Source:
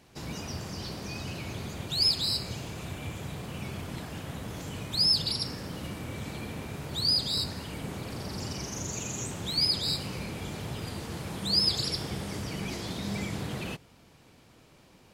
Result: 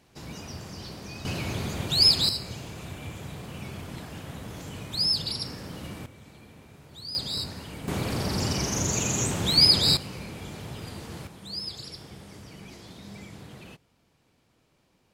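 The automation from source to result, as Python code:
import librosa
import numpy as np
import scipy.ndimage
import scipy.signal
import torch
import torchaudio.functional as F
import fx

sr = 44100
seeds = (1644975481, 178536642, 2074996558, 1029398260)

y = fx.gain(x, sr, db=fx.steps((0.0, -2.5), (1.25, 6.0), (2.29, -1.0), (6.06, -12.5), (7.15, -1.5), (7.88, 8.5), (9.97, -2.0), (11.27, -10.0)))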